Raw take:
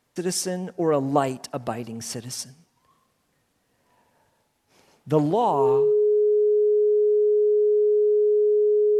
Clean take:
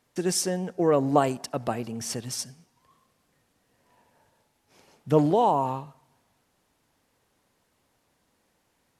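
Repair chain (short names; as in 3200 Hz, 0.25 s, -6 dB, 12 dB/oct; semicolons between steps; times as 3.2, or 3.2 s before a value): notch 420 Hz, Q 30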